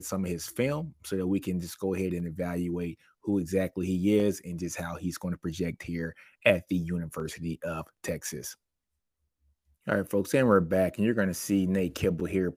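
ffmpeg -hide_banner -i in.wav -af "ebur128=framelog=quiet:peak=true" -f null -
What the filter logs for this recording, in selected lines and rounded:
Integrated loudness:
  I:         -29.8 LUFS
  Threshold: -39.9 LUFS
Loudness range:
  LRA:         5.6 LU
  Threshold: -50.7 LUFS
  LRA low:   -33.6 LUFS
  LRA high:  -28.0 LUFS
True peak:
  Peak:       -5.9 dBFS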